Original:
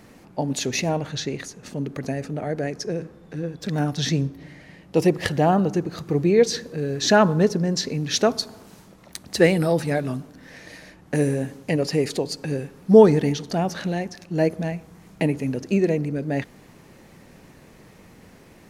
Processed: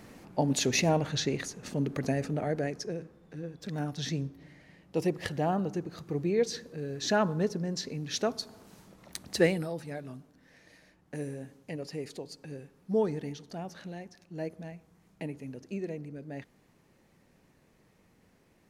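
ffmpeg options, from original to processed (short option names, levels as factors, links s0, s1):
-af "volume=1.68,afade=t=out:st=2.26:d=0.77:silence=0.375837,afade=t=in:st=8.38:d=0.83:silence=0.473151,afade=t=out:st=9.21:d=0.49:silence=0.251189"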